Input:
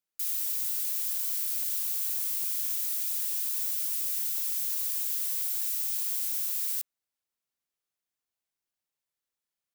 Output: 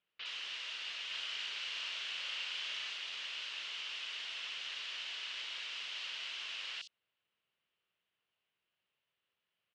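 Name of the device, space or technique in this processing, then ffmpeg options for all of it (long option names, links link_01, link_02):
guitar cabinet: -filter_complex "[0:a]lowpass=6100,highpass=93,equalizer=frequency=270:width_type=q:width=4:gain=-9,equalizer=frequency=790:width_type=q:width=4:gain=-5,equalizer=frequency=2900:width_type=q:width=4:gain=9,lowpass=frequency=3900:width=0.5412,lowpass=frequency=3900:width=1.3066,asettb=1/sr,asplit=3[link_01][link_02][link_03];[link_01]atrim=end=1.064[link_04];[link_02]atrim=start=1.06:end=2.9,asetpts=PTS-STARTPTS,afade=type=in:duration=0.004:curve=qsin,afade=type=out:start_time=1.836:duration=0.004:curve=qsin,asplit=2[link_05][link_06];[link_06]adelay=37,volume=-3dB[link_07];[link_05][link_07]amix=inputs=2:normalize=0,atrim=end_sample=81144[link_08];[link_03]atrim=start=2.896[link_09];[link_04][link_08]acrossfade=duration=0.004:curve1=hsin:curve2=qsin[link_10];[link_10][link_09]acrossfade=duration=0.004:curve1=qsin:curve2=hsin,acrossover=split=4400[link_11][link_12];[link_12]adelay=60[link_13];[link_11][link_13]amix=inputs=2:normalize=0,volume=7.5dB"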